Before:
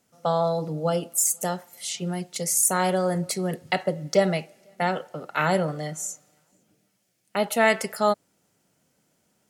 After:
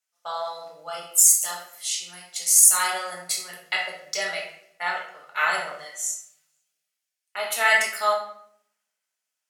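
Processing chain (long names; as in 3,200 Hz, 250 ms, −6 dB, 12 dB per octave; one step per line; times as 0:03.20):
high-pass filter 1,400 Hz 12 dB per octave
rectangular room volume 220 cubic metres, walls mixed, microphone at 1.4 metres
multiband upward and downward expander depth 40%
level +1 dB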